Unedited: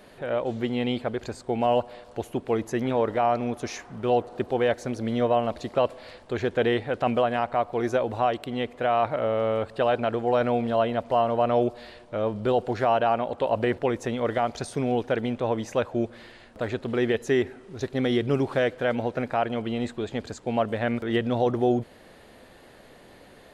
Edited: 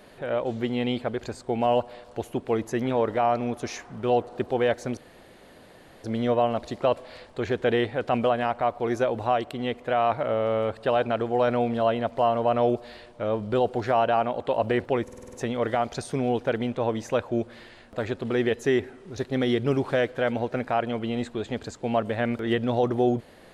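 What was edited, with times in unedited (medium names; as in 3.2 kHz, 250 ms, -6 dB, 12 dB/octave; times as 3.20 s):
4.97 s: insert room tone 1.07 s
13.96 s: stutter 0.05 s, 7 plays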